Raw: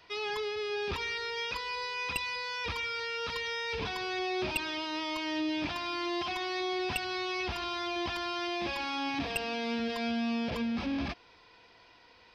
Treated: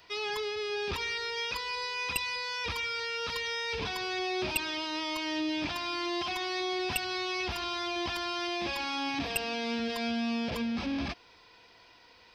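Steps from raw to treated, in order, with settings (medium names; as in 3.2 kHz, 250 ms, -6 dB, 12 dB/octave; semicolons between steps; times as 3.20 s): treble shelf 6.5 kHz +10 dB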